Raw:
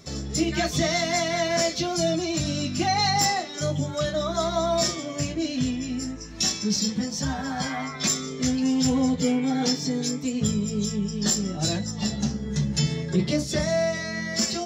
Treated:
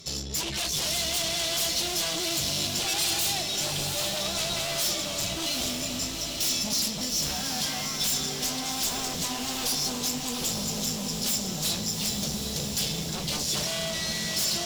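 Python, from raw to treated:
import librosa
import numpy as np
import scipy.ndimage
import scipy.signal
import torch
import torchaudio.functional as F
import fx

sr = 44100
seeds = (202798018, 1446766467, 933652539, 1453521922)

p1 = 10.0 ** (-24.0 / 20.0) * (np.abs((x / 10.0 ** (-24.0 / 20.0) + 3.0) % 4.0 - 2.0) - 1.0)
p2 = fx.peak_eq(p1, sr, hz=280.0, db=-8.0, octaves=0.3)
p3 = fx.tube_stage(p2, sr, drive_db=34.0, bias=0.65)
p4 = fx.high_shelf_res(p3, sr, hz=2400.0, db=8.0, q=1.5)
p5 = p4 + fx.echo_diffused(p4, sr, ms=793, feedback_pct=59, wet_db=-5.0, dry=0)
y = p5 * 10.0 ** (1.5 / 20.0)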